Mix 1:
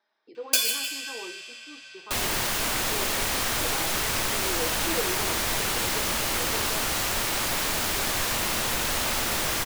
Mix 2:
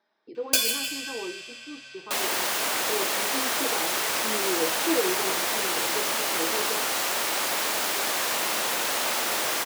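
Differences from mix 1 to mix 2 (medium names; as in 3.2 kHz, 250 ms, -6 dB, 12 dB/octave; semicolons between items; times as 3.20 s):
second sound: add high-pass 520 Hz 12 dB/octave; master: add bass shelf 480 Hz +10 dB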